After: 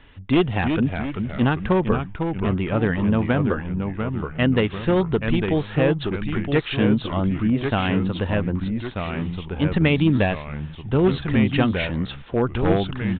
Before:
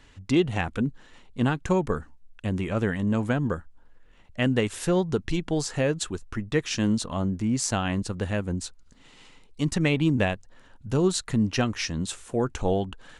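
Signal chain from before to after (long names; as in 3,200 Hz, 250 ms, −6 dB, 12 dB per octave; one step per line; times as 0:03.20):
wavefolder on the positive side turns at −18 dBFS
delay with pitch and tempo change per echo 293 ms, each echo −2 semitones, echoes 3, each echo −6 dB
downsampling to 8,000 Hz
level +4.5 dB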